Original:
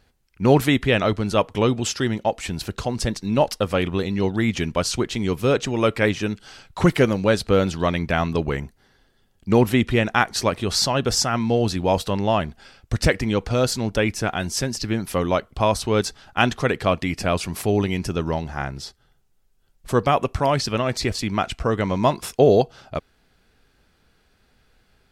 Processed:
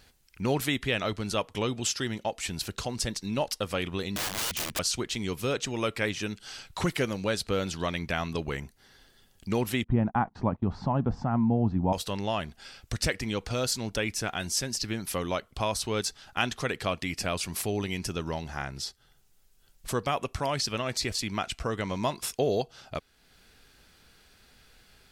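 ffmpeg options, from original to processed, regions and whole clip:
-filter_complex "[0:a]asettb=1/sr,asplit=3[s0][s1][s2];[s0]atrim=end=4.164[s3];[s1]atrim=start=4.16:end=4.79,asetpts=PTS-STARTPTS,afade=t=in:d=0.004:c=qsin,afade=t=out:st=0.626:d=0.004:c=qsin,lowshelf=f=87:g=4.5,aeval=exprs='(mod(11.9*val(0)+1,2)-1)/11.9':c=same[s4];[s2]atrim=start=4.786[s5];[s3][s4]acrossfade=d=0.004:c1=hsin:c2=qsin[s6];[s6][s5]acrossfade=d=0.004:c1=qsin:c2=hsin,asettb=1/sr,asplit=3[s7][s8][s9];[s7]atrim=end=9.844[s10];[s8]atrim=start=9.84:end=11.93,asetpts=PTS-STARTPTS,afade=t=in:d=0.004:c=qsin,afade=t=out:st=2.086:d=0.004:c=qsin,agate=range=0.0631:threshold=0.0251:ratio=16:release=100:detection=peak,lowpass=f=880:t=q:w=2.6,lowshelf=f=320:t=q:w=1.5:g=9.5[s11];[s9]atrim=start=11.926[s12];[s10][s11]acrossfade=d=0.004:c1=hsin:c2=qsin[s13];[s13][s12]acrossfade=d=0.004:c1=qsin:c2=hsin,highshelf=f=2100:g=9.5,acompressor=threshold=0.00501:ratio=1.5"

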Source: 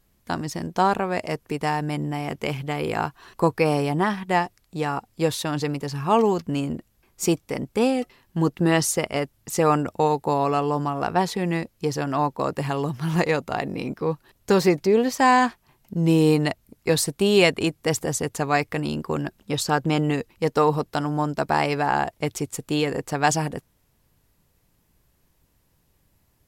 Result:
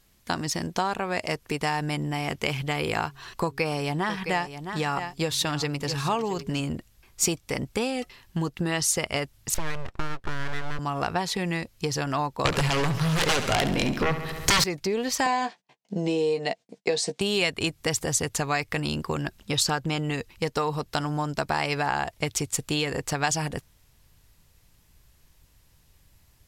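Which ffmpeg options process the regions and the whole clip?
-filter_complex "[0:a]asettb=1/sr,asplit=3[s0][s1][s2];[s0]atrim=end=3.054[s3];[s1]atrim=start=3.05:end=6.6,asetpts=PTS-STARTPTS,afade=t=in:d=0.004:c=qsin,afade=t=out:st=3.546:d=0.004:c=qsin,equalizer=f=10000:t=o:w=0.29:g=-3,bandreject=f=136.3:t=h:w=4,bandreject=f=272.6:t=h:w=4,bandreject=f=408.9:t=h:w=4,aecho=1:1:663:0.188,atrim=end_sample=156555[s4];[s2]atrim=start=6.596[s5];[s3][s4]acrossfade=d=0.004:c1=hsin:c2=qsin[s6];[s6][s5]acrossfade=d=0.004:c1=qsin:c2=hsin,asettb=1/sr,asplit=3[s7][s8][s9];[s7]atrim=end=9.544[s10];[s8]atrim=start=9.54:end=10.79,asetpts=PTS-STARTPTS,afade=t=in:d=0.004:c=qsin,afade=t=out:st=1.246:d=0.004:c=qsin,lowpass=f=1500:p=1,aeval=exprs='abs(val(0))':c=same[s11];[s9]atrim=start=10.786[s12];[s10][s11]acrossfade=d=0.004:c1=hsin:c2=qsin[s13];[s13][s12]acrossfade=d=0.004:c1=qsin:c2=hsin,asettb=1/sr,asplit=3[s14][s15][s16];[s14]atrim=end=12.454[s17];[s15]atrim=start=12.45:end=14.64,asetpts=PTS-STARTPTS,afade=t=in:d=0.004:c=qsin,afade=t=out:st=2.186:d=0.004:c=qsin,aeval=exprs='0.422*sin(PI/2*5.62*val(0)/0.422)':c=same,aecho=1:1:69|138|207|276|345|414:0.266|0.152|0.0864|0.0493|0.0281|0.016,atrim=end_sample=96579[s18];[s16]atrim=start=14.636[s19];[s17][s18]acrossfade=d=0.004:c1=hsin:c2=qsin[s20];[s20][s19]acrossfade=d=0.004:c1=qsin:c2=hsin,asettb=1/sr,asplit=3[s21][s22][s23];[s21]atrim=end=15.264[s24];[s22]atrim=start=15.26:end=17.21,asetpts=PTS-STARTPTS,afade=t=in:d=0.004:c=qsin,afade=t=out:st=1.946:d=0.004:c=qsin,agate=range=0.0224:threshold=0.00126:ratio=16:release=100:detection=peak,highpass=f=180:w=0.5412,highpass=f=180:w=1.3066,equalizer=f=190:t=q:w=4:g=5,equalizer=f=470:t=q:w=4:g=9,equalizer=f=700:t=q:w=4:g=9,equalizer=f=1300:t=q:w=4:g=-7,lowpass=f=7700:w=0.5412,lowpass=f=7700:w=1.3066,asplit=2[s25][s26];[s26]adelay=15,volume=0.398[s27];[s25][s27]amix=inputs=2:normalize=0,atrim=end_sample=85995[s28];[s23]atrim=start=17.206[s29];[s24][s28]acrossfade=d=0.004:c1=hsin:c2=qsin[s30];[s30][s29]acrossfade=d=0.004:c1=qsin:c2=hsin,asubboost=boost=2:cutoff=140,acompressor=threshold=0.0562:ratio=5,equalizer=f=4500:w=0.33:g=8"

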